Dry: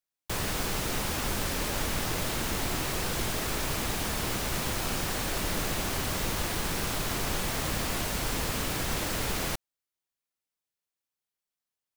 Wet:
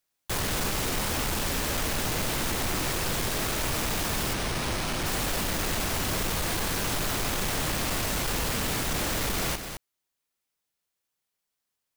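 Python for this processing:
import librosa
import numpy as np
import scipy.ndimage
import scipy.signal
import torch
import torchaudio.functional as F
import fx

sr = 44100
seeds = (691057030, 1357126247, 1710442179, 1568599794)

y = fx.rider(x, sr, range_db=10, speed_s=0.5)
y = np.clip(y, -10.0 ** (-32.0 / 20.0), 10.0 ** (-32.0 / 20.0))
y = y + 10.0 ** (-8.0 / 20.0) * np.pad(y, (int(214 * sr / 1000.0), 0))[:len(y)]
y = fx.resample_bad(y, sr, factor=3, down='filtered', up='hold', at=(4.33, 5.06))
y = y * 10.0 ** (5.5 / 20.0)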